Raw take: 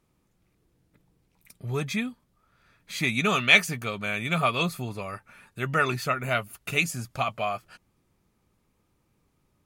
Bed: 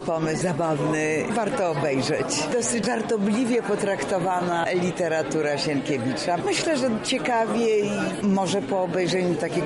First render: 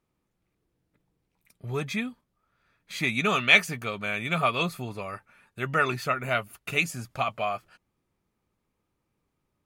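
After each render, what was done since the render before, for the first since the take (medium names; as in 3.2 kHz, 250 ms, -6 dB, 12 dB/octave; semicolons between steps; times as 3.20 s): gate -46 dBFS, range -6 dB; tone controls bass -3 dB, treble -4 dB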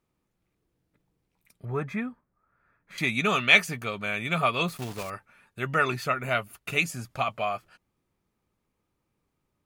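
1.65–2.98 s: resonant high shelf 2.4 kHz -13.5 dB, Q 1.5; 4.68–5.10 s: block-companded coder 3-bit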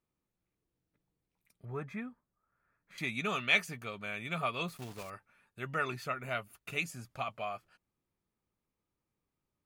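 trim -9.5 dB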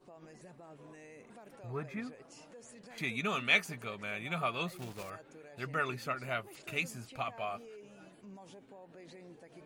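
add bed -30 dB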